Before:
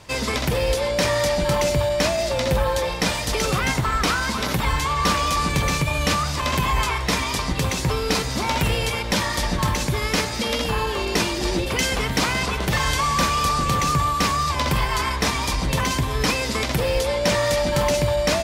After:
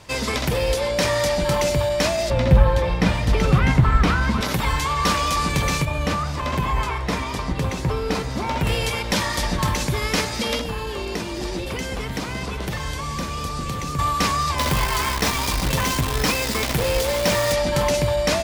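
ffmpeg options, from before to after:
ffmpeg -i in.wav -filter_complex "[0:a]asettb=1/sr,asplit=3[link_01][link_02][link_03];[link_01]atrim=end=2.304[link_04];[link_02]atrim=start=2.3:end=4.41,asetpts=PTS-STARTPTS,afade=type=in:duration=0.004:curve=qsin,afade=type=out:start_time=2.106:duration=0.004:curve=qsin,bass=frequency=250:gain=10,treble=frequency=4000:gain=-12[link_05];[link_03]atrim=start=4.406[link_06];[link_04][link_05]acrossfade=duration=0.004:curve1=hsin:curve2=qsin[link_07];[link_07][link_06]acrossfade=duration=0.004:curve1=qsin:curve2=hsin,asettb=1/sr,asplit=3[link_08][link_09][link_10];[link_08]atrim=end=5.854[link_11];[link_09]atrim=start=5.85:end=8.67,asetpts=PTS-STARTPTS,afade=type=in:duration=0.004:curve=qsin,afade=type=out:start_time=2.816:duration=0.004:curve=qsin,highshelf=frequency=2400:gain=-10.5[link_12];[link_10]atrim=start=8.666[link_13];[link_11][link_12]acrossfade=duration=0.004:curve1=hsin:curve2=qsin[link_14];[link_14][link_13]acrossfade=duration=0.004:curve1=qsin:curve2=hsin,asettb=1/sr,asplit=3[link_15][link_16][link_17];[link_15]atrim=end=10.594[link_18];[link_16]atrim=start=10.59:end=13.99,asetpts=PTS-STARTPTS,afade=type=in:duration=0.004:curve=qsin,afade=type=out:start_time=3.396:duration=0.004:curve=qsin,acrossover=split=570|1700[link_19][link_20][link_21];[link_19]acompressor=threshold=-26dB:ratio=4[link_22];[link_20]acompressor=threshold=-37dB:ratio=4[link_23];[link_21]acompressor=threshold=-35dB:ratio=4[link_24];[link_22][link_23][link_24]amix=inputs=3:normalize=0[link_25];[link_17]atrim=start=13.986[link_26];[link_18][link_25]acrossfade=duration=0.004:curve1=hsin:curve2=qsin[link_27];[link_27][link_26]acrossfade=duration=0.004:curve1=qsin:curve2=hsin,asettb=1/sr,asplit=3[link_28][link_29][link_30];[link_28]atrim=end=14.584[link_31];[link_29]atrim=start=14.58:end=17.53,asetpts=PTS-STARTPTS,afade=type=in:duration=0.004:curve=qsin,afade=type=out:start_time=2.946:duration=0.004:curve=qsin,acrusher=bits=5:dc=4:mix=0:aa=0.000001[link_32];[link_30]atrim=start=17.526[link_33];[link_31][link_32]acrossfade=duration=0.004:curve1=hsin:curve2=qsin[link_34];[link_34][link_33]acrossfade=duration=0.004:curve1=qsin:curve2=hsin" out.wav

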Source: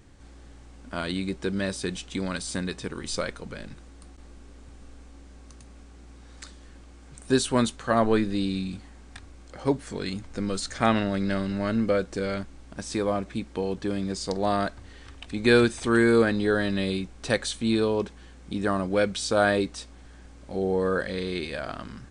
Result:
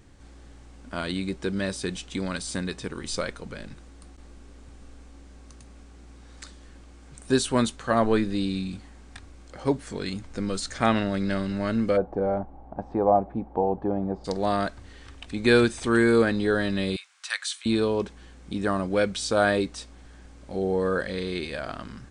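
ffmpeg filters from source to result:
ffmpeg -i in.wav -filter_complex "[0:a]asplit=3[link_01][link_02][link_03];[link_01]afade=type=out:start_time=11.96:duration=0.02[link_04];[link_02]lowpass=frequency=790:width_type=q:width=6.2,afade=type=in:start_time=11.96:duration=0.02,afade=type=out:start_time=14.24:duration=0.02[link_05];[link_03]afade=type=in:start_time=14.24:duration=0.02[link_06];[link_04][link_05][link_06]amix=inputs=3:normalize=0,asettb=1/sr,asplit=3[link_07][link_08][link_09];[link_07]atrim=end=16.964[link_10];[link_08]atrim=start=16.96:end=17.66,asetpts=PTS-STARTPTS,afade=type=in:duration=0.004:curve=qsin,afade=type=out:start_time=0.696:duration=0.004:curve=qsin,highpass=frequency=1200:width=0.5412,highpass=frequency=1200:width=1.3066[link_11];[link_09]atrim=start=17.656[link_12];[link_10][link_11]acrossfade=duration=0.004:curve1=hsin:curve2=qsin[link_13];[link_13][link_12]acrossfade=duration=0.004:curve1=qsin:curve2=hsin" out.wav

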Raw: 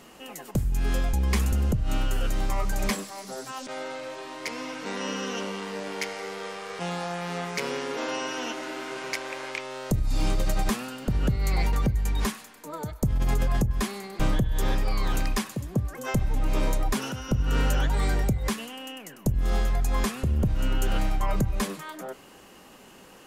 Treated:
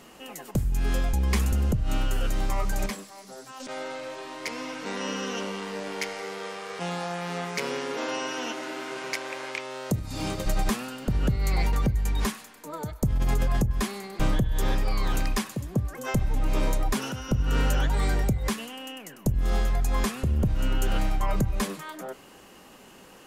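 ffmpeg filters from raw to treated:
ffmpeg -i in.wav -filter_complex "[0:a]asettb=1/sr,asplit=3[link_01][link_02][link_03];[link_01]atrim=end=6.224[link_04];[link_02]atrim=start=6.22:end=10.46,asetpts=PTS-STARTPTS,afade=type=in:duration=0.004:curve=qsin,afade=type=out:start_time=4.236:duration=0.004:curve=qsin,highpass=87[link_05];[link_03]atrim=start=10.456[link_06];[link_04][link_05]acrossfade=duration=0.004:curve1=hsin:curve2=qsin[link_07];[link_07][link_06]acrossfade=duration=0.004:curve1=qsin:curve2=hsin,asplit=3[link_08][link_09][link_10];[link_08]atrim=end=2.862[link_11];[link_09]atrim=start=2.858:end=3.602,asetpts=PTS-STARTPTS,volume=-6.5dB[link_12];[link_10]atrim=start=3.598[link_13];[link_11][link_12]acrossfade=duration=0.004:curve1=hsin:curve2=hsin[link_14];[link_14][link_13]acrossfade=duration=0.004:curve1=hsin:curve2=hsin" out.wav

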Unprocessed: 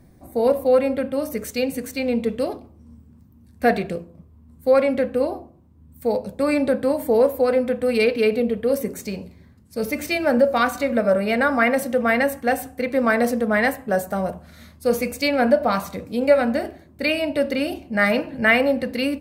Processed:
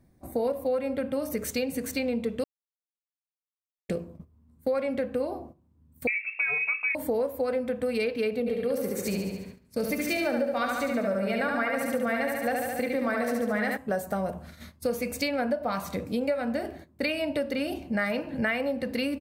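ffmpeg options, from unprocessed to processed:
ffmpeg -i in.wav -filter_complex "[0:a]asettb=1/sr,asplit=3[link_01][link_02][link_03];[link_01]atrim=end=6.074[link_04];[link_02]atrim=start=6.07:end=6.95,asetpts=PTS-STARTPTS,afade=type=in:duration=0.004:curve=qsin,afade=type=out:start_time=0.876:duration=0.004:curve=qsin,lowpass=frequency=2400:width_type=q:width=0.5098,lowpass=frequency=2400:width_type=q:width=0.6013,lowpass=frequency=2400:width_type=q:width=0.9,lowpass=frequency=2400:width_type=q:width=2.563,afreqshift=-2800[link_05];[link_03]atrim=start=6.946[link_06];[link_04][link_05]acrossfade=duration=0.004:curve1=hsin:curve2=qsin[link_07];[link_07][link_06]acrossfade=duration=0.004:curve1=qsin:curve2=hsin,asplit=3[link_08][link_09][link_10];[link_08]afade=type=out:start_time=8.46:duration=0.02[link_11];[link_09]aecho=1:1:71|142|213|284|355|426|497|568:0.708|0.411|0.238|0.138|0.0801|0.0465|0.027|0.0156,afade=type=in:start_time=8.46:duration=0.02,afade=type=out:start_time=13.76:duration=0.02[link_12];[link_10]afade=type=in:start_time=13.76:duration=0.02[link_13];[link_11][link_12][link_13]amix=inputs=3:normalize=0,asplit=3[link_14][link_15][link_16];[link_14]atrim=end=2.44,asetpts=PTS-STARTPTS,afade=type=out:start_time=2.436:duration=0.004:curve=hsin[link_17];[link_15]atrim=start=2.44:end=3.89,asetpts=PTS-STARTPTS,volume=0[link_18];[link_16]atrim=start=3.89,asetpts=PTS-STARTPTS,afade=type=in:duration=0.004:curve=hsin[link_19];[link_17][link_18][link_19]concat=n=3:v=0:a=1,agate=range=-12dB:threshold=-44dB:ratio=16:detection=peak,acompressor=threshold=-27dB:ratio=5,volume=1dB" out.wav

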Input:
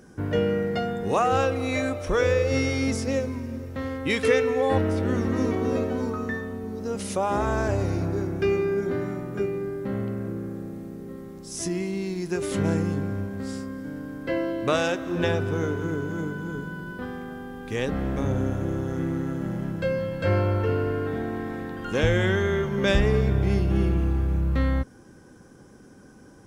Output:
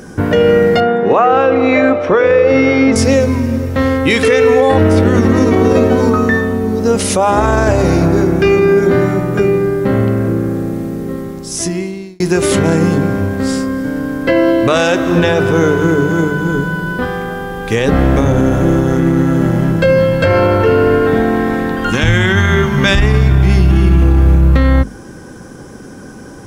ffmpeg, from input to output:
ffmpeg -i in.wav -filter_complex "[0:a]asettb=1/sr,asplit=3[link_01][link_02][link_03];[link_01]atrim=end=0.804[link_04];[link_02]atrim=start=0.8:end=2.96,asetpts=PTS-STARTPTS,afade=type=in:duration=0.004:curve=qsin,afade=type=out:start_time=2.156:duration=0.004:curve=qsin,highpass=200,lowpass=2200[link_05];[link_03]atrim=start=2.956[link_06];[link_04][link_05]acrossfade=duration=0.004:curve1=hsin:curve2=qsin[link_07];[link_07][link_06]acrossfade=duration=0.004:curve1=qsin:curve2=hsin,asettb=1/sr,asplit=3[link_08][link_09][link_10];[link_08]atrim=end=21.904[link_11];[link_09]atrim=start=21.9:end=24.02,asetpts=PTS-STARTPTS,afade=type=in:duration=0.004:curve=qsin,afade=type=out:start_time=2.116:duration=0.004:curve=qsin,equalizer=frequency=500:width=2:gain=-12.5[link_12];[link_10]atrim=start=24.016[link_13];[link_11][link_12]acrossfade=duration=0.004:curve1=hsin:curve2=qsin[link_14];[link_14][link_13]acrossfade=duration=0.004:curve1=qsin:curve2=hsin,asplit=2[link_15][link_16];[link_15]atrim=end=12.2,asetpts=PTS-STARTPTS,afade=type=out:start_time=11.13:duration=1.07[link_17];[link_16]atrim=start=12.2,asetpts=PTS-STARTPTS,afade=type=in:duration=0.004:curve=hsin[link_18];[link_17][link_18]concat=n=2:v=0:a=1,bandreject=frequency=50:width_type=h:width=6,bandreject=frequency=100:width_type=h:width=6,bandreject=frequency=150:width_type=h:width=6,bandreject=frequency=200:width_type=h:width=6,bandreject=frequency=250:width_type=h:width=6,bandreject=frequency=300:width_type=h:width=6,bandreject=frequency=350:width_type=h:width=6,bandreject=frequency=400:width_type=h:width=6,alimiter=level_in=19dB:limit=-1dB:release=50:level=0:latency=1,volume=-1dB" out.wav

